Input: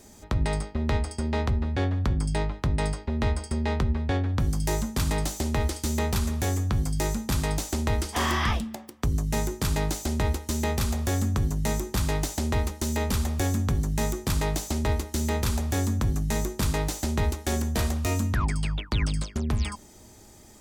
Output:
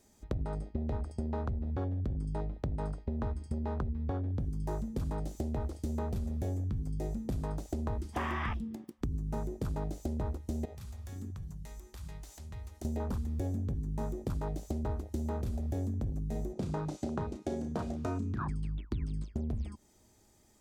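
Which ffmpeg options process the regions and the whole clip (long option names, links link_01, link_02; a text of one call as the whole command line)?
ffmpeg -i in.wav -filter_complex "[0:a]asettb=1/sr,asplit=3[link_01][link_02][link_03];[link_01]atrim=end=10.654[link_04];[link_02]atrim=start=10.65:end=12.85,asetpts=PTS-STARTPTS,afade=type=in:duration=0.004:curve=qsin,afade=type=out:start_time=2.196:duration=0.004:curve=qsin,acompressor=threshold=-34dB:ratio=3:attack=3.2:release=140:knee=1:detection=peak,lowshelf=frequency=290:gain=-9.5[link_05];[link_03]atrim=start=12.846[link_06];[link_04][link_05]acrossfade=duration=0.004:curve1=hsin:curve2=qsin[link_07];[link_07][link_06]acrossfade=duration=0.004:curve1=qsin:curve2=hsin,asettb=1/sr,asplit=3[link_08][link_09][link_10];[link_08]atrim=end=16.534[link_11];[link_09]atrim=start=16.53:end=18.49,asetpts=PTS-STARTPTS,afade=type=in:duration=0.004:curve=qsin,afade=type=out:start_time=1.956:duration=0.004:curve=qsin,highpass=120,lowpass=7400,bandreject=frequency=1800:width=18,asplit=2[link_12][link_13];[link_13]adelay=33,volume=-7dB[link_14];[link_12][link_14]amix=inputs=2:normalize=0,atrim=end_sample=86436[link_15];[link_10]atrim=start=18.486[link_16];[link_11][link_15]acrossfade=duration=0.004:curve1=hsin:curve2=qsin[link_17];[link_17][link_16]acrossfade=duration=0.004:curve1=qsin:curve2=hsin,afwtdn=0.0355,acompressor=threshold=-34dB:ratio=6,volume=2dB" out.wav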